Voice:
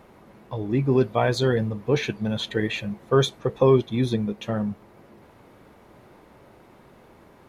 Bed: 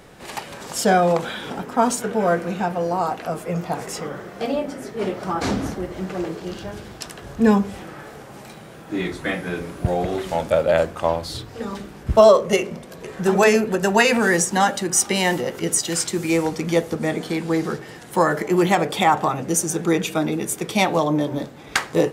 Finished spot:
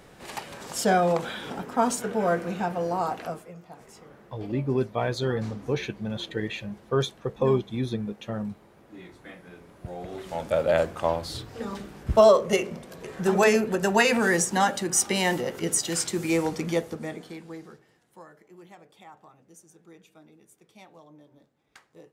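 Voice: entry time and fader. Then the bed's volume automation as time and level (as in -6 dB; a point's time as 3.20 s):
3.80 s, -5.5 dB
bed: 3.26 s -5 dB
3.55 s -20.5 dB
9.66 s -20.5 dB
10.65 s -4.5 dB
16.62 s -4.5 dB
18.34 s -32 dB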